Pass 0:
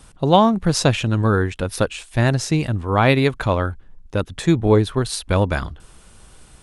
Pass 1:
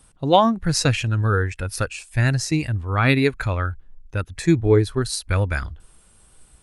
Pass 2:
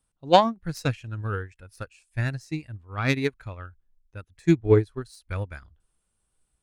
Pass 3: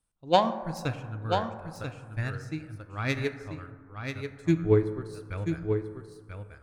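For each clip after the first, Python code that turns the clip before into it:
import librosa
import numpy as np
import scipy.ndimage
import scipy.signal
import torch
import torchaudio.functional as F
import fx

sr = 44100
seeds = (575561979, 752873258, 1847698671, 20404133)

y1 = fx.noise_reduce_blind(x, sr, reduce_db=9)
y2 = fx.self_delay(y1, sr, depth_ms=0.056)
y2 = fx.upward_expand(y2, sr, threshold_db=-26.0, expansion=2.5)
y2 = y2 * librosa.db_to_amplitude(1.0)
y3 = y2 + 10.0 ** (-6.5 / 20.0) * np.pad(y2, (int(987 * sr / 1000.0), 0))[:len(y2)]
y3 = fx.rev_plate(y3, sr, seeds[0], rt60_s=1.8, hf_ratio=0.3, predelay_ms=0, drr_db=9.5)
y3 = y3 * librosa.db_to_amplitude(-5.0)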